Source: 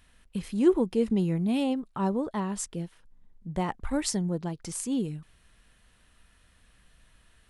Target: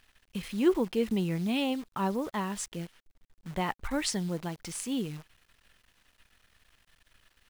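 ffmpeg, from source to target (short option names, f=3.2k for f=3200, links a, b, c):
-filter_complex "[0:a]acrossover=split=3400[a][b];[a]crystalizer=i=9:c=0[c];[c][b]amix=inputs=2:normalize=0,acrusher=bits=8:dc=4:mix=0:aa=0.000001,volume=-4dB"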